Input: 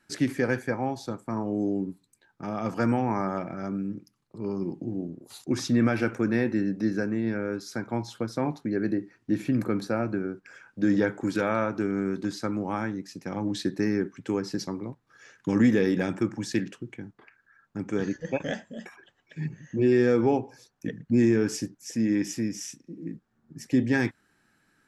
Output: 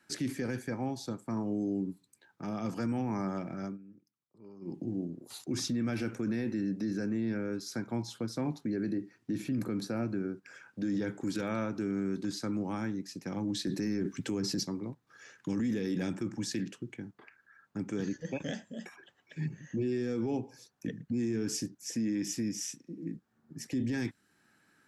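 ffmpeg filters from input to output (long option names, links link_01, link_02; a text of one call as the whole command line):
ffmpeg -i in.wav -filter_complex "[0:a]asplit=5[link_01][link_02][link_03][link_04][link_05];[link_01]atrim=end=3.78,asetpts=PTS-STARTPTS,afade=type=out:start_time=3.64:duration=0.14:silence=0.112202[link_06];[link_02]atrim=start=3.78:end=4.61,asetpts=PTS-STARTPTS,volume=-19dB[link_07];[link_03]atrim=start=4.61:end=13.672,asetpts=PTS-STARTPTS,afade=type=in:duration=0.14:silence=0.112202[link_08];[link_04]atrim=start=13.668:end=14.632,asetpts=PTS-STARTPTS,volume=9.5dB[link_09];[link_05]atrim=start=14.628[link_10];[link_06][link_07][link_08]concat=n=3:v=0:a=1[link_11];[link_11][link_09]acrossfade=duration=0.004:curve1=hsin:curve2=hsin[link_12];[link_12][link_10]acrossfade=duration=0.004:curve1=hsin:curve2=hsin,highpass=frequency=130:poles=1,acrossover=split=320|3000[link_13][link_14][link_15];[link_14]acompressor=threshold=-55dB:ratio=1.5[link_16];[link_13][link_16][link_15]amix=inputs=3:normalize=0,alimiter=level_in=1dB:limit=-24dB:level=0:latency=1:release=18,volume=-1dB" out.wav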